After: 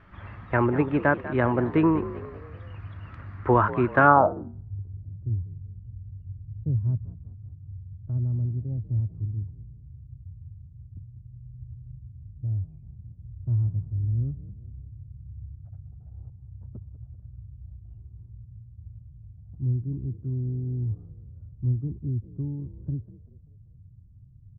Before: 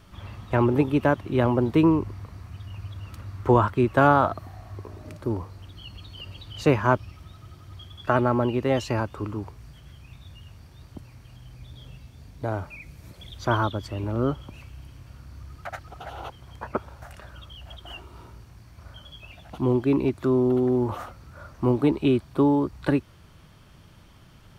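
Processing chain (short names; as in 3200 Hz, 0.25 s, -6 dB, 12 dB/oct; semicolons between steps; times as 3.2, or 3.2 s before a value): frequency-shifting echo 0.194 s, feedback 46%, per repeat +47 Hz, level -15 dB; low-pass sweep 1800 Hz -> 110 Hz, 4.03–4.64; gain -2.5 dB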